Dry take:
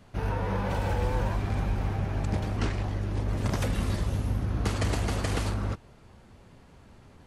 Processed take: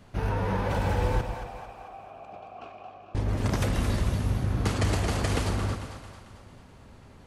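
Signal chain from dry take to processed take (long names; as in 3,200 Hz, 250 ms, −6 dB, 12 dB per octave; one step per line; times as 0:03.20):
0:01.21–0:03.15: formant filter a
echo with a time of its own for lows and highs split 560 Hz, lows 127 ms, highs 223 ms, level −8 dB
level +1.5 dB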